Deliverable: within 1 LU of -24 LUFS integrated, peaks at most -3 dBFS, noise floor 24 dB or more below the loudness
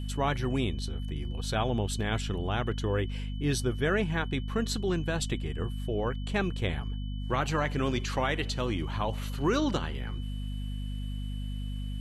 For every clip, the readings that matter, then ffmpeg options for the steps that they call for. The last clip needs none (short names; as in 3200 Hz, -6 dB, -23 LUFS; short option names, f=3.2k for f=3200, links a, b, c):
hum 50 Hz; harmonics up to 250 Hz; hum level -32 dBFS; steady tone 3000 Hz; tone level -51 dBFS; loudness -31.5 LUFS; peak -14.5 dBFS; loudness target -24.0 LUFS
-> -af "bandreject=f=50:t=h:w=4,bandreject=f=100:t=h:w=4,bandreject=f=150:t=h:w=4,bandreject=f=200:t=h:w=4,bandreject=f=250:t=h:w=4"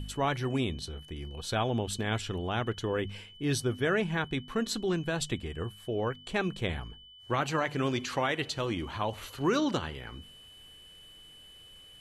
hum none; steady tone 3000 Hz; tone level -51 dBFS
-> -af "bandreject=f=3k:w=30"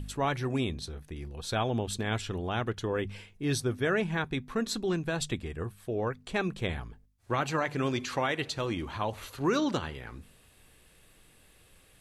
steady tone none; loudness -32.0 LUFS; peak -16.0 dBFS; loudness target -24.0 LUFS
-> -af "volume=8dB"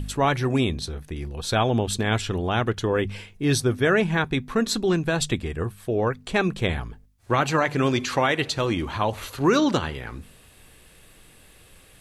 loudness -24.0 LUFS; peak -8.0 dBFS; noise floor -53 dBFS